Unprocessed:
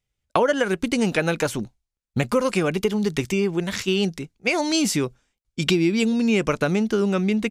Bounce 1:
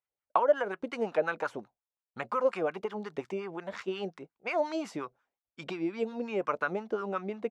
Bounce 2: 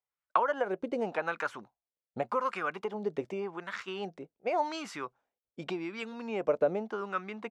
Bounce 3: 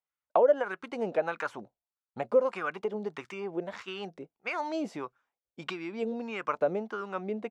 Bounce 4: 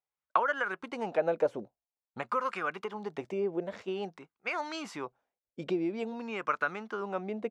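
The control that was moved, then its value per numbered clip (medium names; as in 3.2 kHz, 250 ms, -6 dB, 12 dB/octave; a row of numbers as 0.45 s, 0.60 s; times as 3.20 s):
wah-wah, rate: 5.6 Hz, 0.87 Hz, 1.6 Hz, 0.49 Hz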